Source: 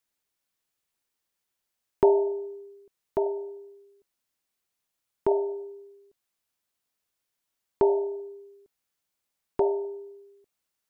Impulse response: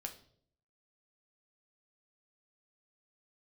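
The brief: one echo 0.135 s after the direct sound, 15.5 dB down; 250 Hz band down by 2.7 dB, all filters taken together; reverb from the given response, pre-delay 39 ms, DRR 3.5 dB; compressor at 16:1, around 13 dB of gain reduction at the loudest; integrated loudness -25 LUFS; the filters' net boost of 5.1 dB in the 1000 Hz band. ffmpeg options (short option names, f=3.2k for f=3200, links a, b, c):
-filter_complex "[0:a]equalizer=f=250:t=o:g=-8.5,equalizer=f=1k:t=o:g=6.5,acompressor=threshold=-28dB:ratio=16,aecho=1:1:135:0.168,asplit=2[a][b];[1:a]atrim=start_sample=2205,adelay=39[c];[b][c]afir=irnorm=-1:irlink=0,volume=-1dB[d];[a][d]amix=inputs=2:normalize=0,volume=11.5dB"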